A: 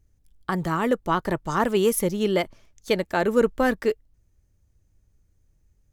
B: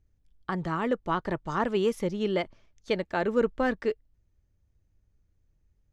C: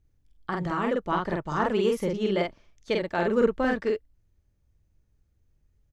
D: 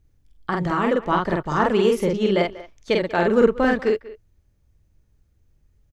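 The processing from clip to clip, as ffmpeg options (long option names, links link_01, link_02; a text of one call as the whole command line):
ffmpeg -i in.wav -af "lowpass=4700,volume=-5dB" out.wav
ffmpeg -i in.wav -filter_complex "[0:a]asplit=2[link_01][link_02];[link_02]adelay=46,volume=-2dB[link_03];[link_01][link_03]amix=inputs=2:normalize=0" out.wav
ffmpeg -i in.wav -filter_complex "[0:a]asplit=2[link_01][link_02];[link_02]adelay=190,highpass=300,lowpass=3400,asoftclip=type=hard:threshold=-18dB,volume=-17dB[link_03];[link_01][link_03]amix=inputs=2:normalize=0,volume=6dB" out.wav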